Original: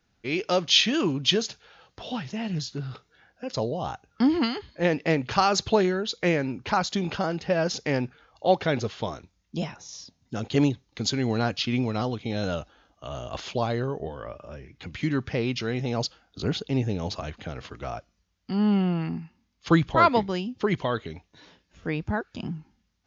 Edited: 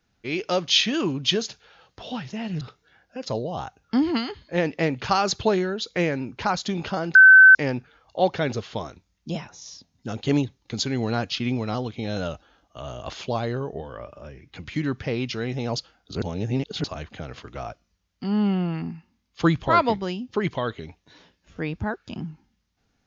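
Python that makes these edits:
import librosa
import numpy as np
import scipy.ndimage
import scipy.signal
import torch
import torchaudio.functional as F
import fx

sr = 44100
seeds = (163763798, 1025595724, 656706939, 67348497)

y = fx.edit(x, sr, fx.cut(start_s=2.61, length_s=0.27),
    fx.bleep(start_s=7.42, length_s=0.4, hz=1530.0, db=-6.5),
    fx.reverse_span(start_s=16.49, length_s=0.62), tone=tone)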